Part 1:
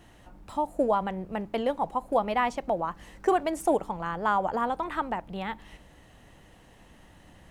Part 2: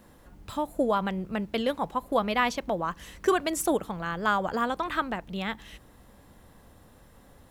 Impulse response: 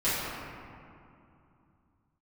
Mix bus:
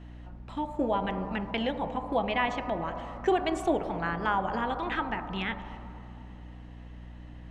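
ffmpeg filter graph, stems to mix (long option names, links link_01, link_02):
-filter_complex "[0:a]volume=-1.5dB,asplit=3[link_01][link_02][link_03];[link_02]volume=-20dB[link_04];[1:a]highpass=440,acompressor=threshold=-32dB:ratio=6,volume=-1,volume=2.5dB[link_05];[link_03]apad=whole_len=330938[link_06];[link_05][link_06]sidechaingate=range=-33dB:threshold=-42dB:ratio=16:detection=peak[link_07];[2:a]atrim=start_sample=2205[link_08];[link_04][link_08]afir=irnorm=-1:irlink=0[link_09];[link_01][link_07][link_09]amix=inputs=3:normalize=0,lowpass=3900,aeval=exprs='val(0)+0.00631*(sin(2*PI*60*n/s)+sin(2*PI*2*60*n/s)/2+sin(2*PI*3*60*n/s)/3+sin(2*PI*4*60*n/s)/4+sin(2*PI*5*60*n/s)/5)':channel_layout=same"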